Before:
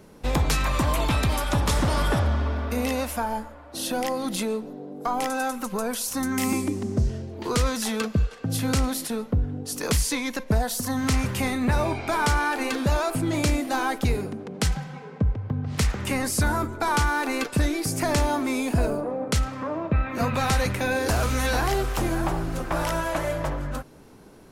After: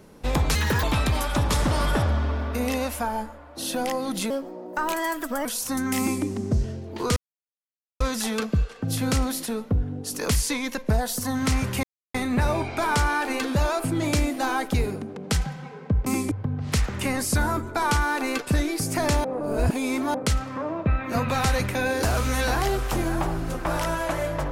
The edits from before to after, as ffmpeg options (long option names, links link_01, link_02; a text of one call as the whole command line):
ffmpeg -i in.wav -filter_complex "[0:a]asplit=11[link_01][link_02][link_03][link_04][link_05][link_06][link_07][link_08][link_09][link_10][link_11];[link_01]atrim=end=0.554[link_12];[link_02]atrim=start=0.55:end=1,asetpts=PTS-STARTPTS,asetrate=70560,aresample=44100,atrim=end_sample=12403,asetpts=PTS-STARTPTS[link_13];[link_03]atrim=start=0.996:end=4.474[link_14];[link_04]atrim=start=4.47:end=5.91,asetpts=PTS-STARTPTS,asetrate=55125,aresample=44100,atrim=end_sample=50803,asetpts=PTS-STARTPTS[link_15];[link_05]atrim=start=5.906:end=7.62,asetpts=PTS-STARTPTS,afade=type=out:start_time=1.71:duration=0.004:curve=hsin,apad=pad_dur=0.84[link_16];[link_06]atrim=start=7.62:end=11.45,asetpts=PTS-STARTPTS,afade=type=in:duration=0.004:curve=hsin,afade=type=out:start_time=3.826:duration=0.004:curve=hsin,apad=pad_dur=0.31[link_17];[link_07]atrim=start=11.45:end=15.372,asetpts=PTS-STARTPTS,afade=type=in:duration=0.004:curve=hsin[link_18];[link_08]atrim=start=6.448:end=6.702[link_19];[link_09]atrim=start=15.368:end=18.302[link_20];[link_10]atrim=start=18.298:end=19.202,asetpts=PTS-STARTPTS,areverse[link_21];[link_11]atrim=start=19.198[link_22];[link_12][link_13]acrossfade=duration=0.004:curve1=hsin:curve2=hsin[link_23];[link_23][link_14]acrossfade=duration=0.004:curve1=hsin:curve2=hsin[link_24];[link_24][link_15]acrossfade=duration=0.004:curve1=hsin:curve2=hsin[link_25];[link_16][link_17][link_18]concat=n=3:v=0:a=1[link_26];[link_25][link_26]acrossfade=duration=0.004:curve1=hsin:curve2=hsin[link_27];[link_27][link_19]acrossfade=duration=0.004:curve1=hsin:curve2=hsin[link_28];[link_28][link_20]acrossfade=duration=0.004:curve1=hsin:curve2=hsin[link_29];[link_29][link_21]acrossfade=duration=0.004:curve1=hsin:curve2=hsin[link_30];[link_30][link_22]acrossfade=duration=0.004:curve1=hsin:curve2=hsin" out.wav